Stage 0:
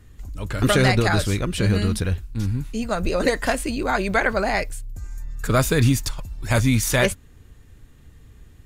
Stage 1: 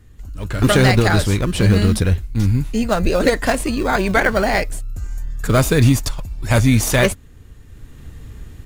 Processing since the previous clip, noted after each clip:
in parallel at −10 dB: sample-and-hold swept by an LFO 27×, swing 60% 0.28 Hz
on the sum: automatic gain control gain up to 10.5 dB
level −1 dB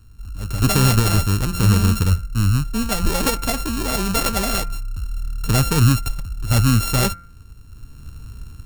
samples sorted by size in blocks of 32 samples
bass and treble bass +7 dB, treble +7 dB
hum removal 172.7 Hz, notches 14
level −7 dB

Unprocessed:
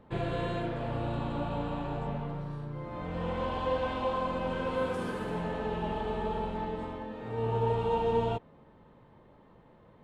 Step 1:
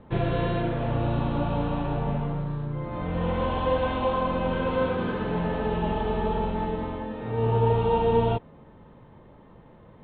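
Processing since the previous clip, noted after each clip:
Butterworth low-pass 4,000 Hz 72 dB per octave
low-shelf EQ 230 Hz +4.5 dB
level +5 dB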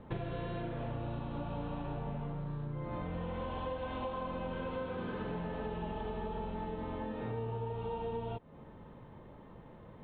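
downward compressor 12 to 1, threshold −33 dBFS, peak gain reduction 16.5 dB
level −2 dB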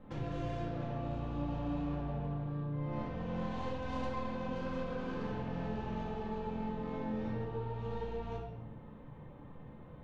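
stylus tracing distortion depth 0.11 ms
rectangular room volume 340 cubic metres, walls mixed, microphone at 2.1 metres
level −7.5 dB

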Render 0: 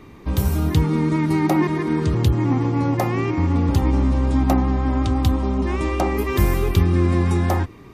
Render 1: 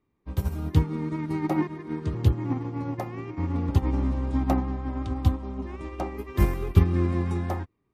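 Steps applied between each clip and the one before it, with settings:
high-shelf EQ 3,500 Hz −7 dB
expander for the loud parts 2.5 to 1, over −33 dBFS
level +1 dB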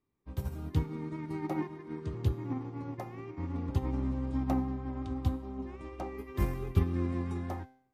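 tuned comb filter 130 Hz, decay 0.6 s, harmonics all, mix 60%
level −1.5 dB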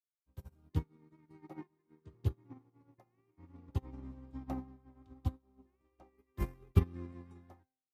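expander for the loud parts 2.5 to 1, over −43 dBFS
level +1.5 dB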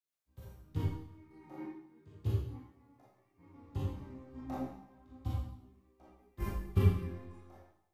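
four-comb reverb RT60 0.73 s, combs from 28 ms, DRR −5.5 dB
chorus effect 0.34 Hz, delay 15.5 ms, depth 7.7 ms

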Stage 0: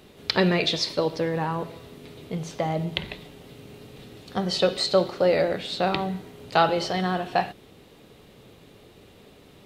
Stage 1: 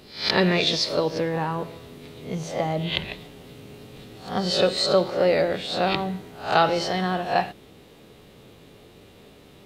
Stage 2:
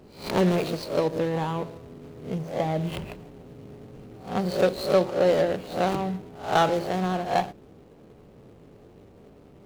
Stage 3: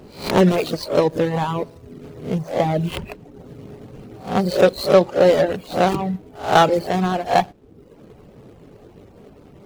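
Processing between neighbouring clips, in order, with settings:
peak hold with a rise ahead of every peak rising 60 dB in 0.41 s
running median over 25 samples
reverb reduction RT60 0.76 s; level +8 dB

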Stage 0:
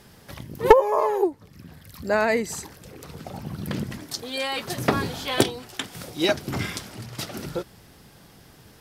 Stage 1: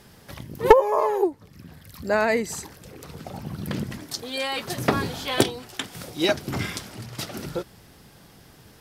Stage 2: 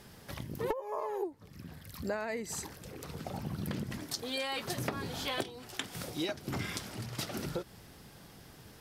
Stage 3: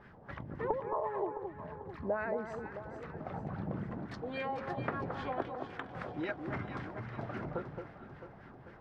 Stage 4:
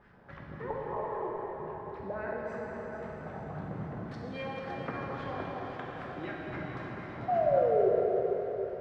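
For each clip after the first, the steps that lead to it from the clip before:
no processing that can be heard
downward compressor 10 to 1, threshold −29 dBFS, peak gain reduction 21.5 dB; level −3 dB
auto-filter low-pass sine 3.7 Hz 690–1,900 Hz; delay that swaps between a low-pass and a high-pass 221 ms, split 1,400 Hz, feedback 70%, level −6 dB; level −3 dB
sound drawn into the spectrogram fall, 0:07.28–0:07.89, 370–750 Hz −24 dBFS; dense smooth reverb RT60 4.5 s, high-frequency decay 1×, DRR −3.5 dB; level −4.5 dB

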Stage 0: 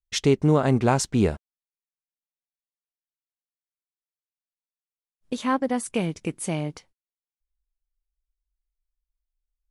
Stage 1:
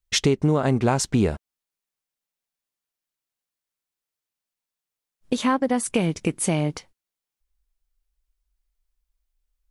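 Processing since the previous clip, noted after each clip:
downward compressor 3 to 1, threshold −26 dBFS, peak gain reduction 9.5 dB
level +7.5 dB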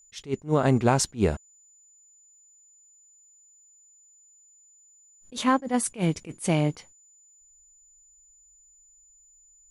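steady tone 7,000 Hz −55 dBFS
level that may rise only so fast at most 280 dB per second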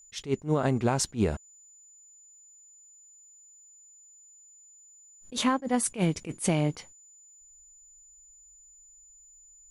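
downward compressor 6 to 1, threshold −24 dBFS, peak gain reduction 8.5 dB
level +2.5 dB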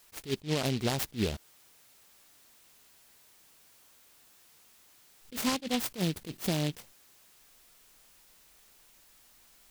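short delay modulated by noise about 3,100 Hz, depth 0.16 ms
level −4.5 dB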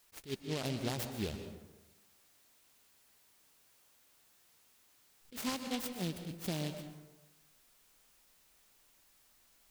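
dense smooth reverb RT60 1.1 s, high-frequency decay 0.5×, pre-delay 110 ms, DRR 7.5 dB
level −7.5 dB

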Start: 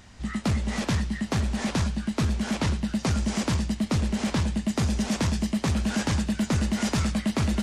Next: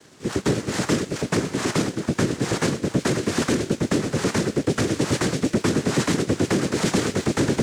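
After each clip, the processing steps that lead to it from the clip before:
cochlear-implant simulation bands 3
leveller curve on the samples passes 1
level +1.5 dB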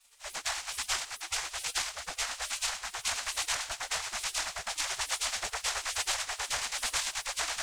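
gate on every frequency bin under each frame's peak −20 dB weak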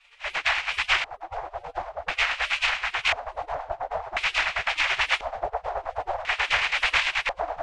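parametric band 230 Hz −11.5 dB 0.41 octaves
auto-filter low-pass square 0.48 Hz 690–2,500 Hz
level +8.5 dB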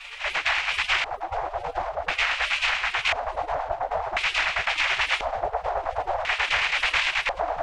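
envelope flattener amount 50%
level −2 dB

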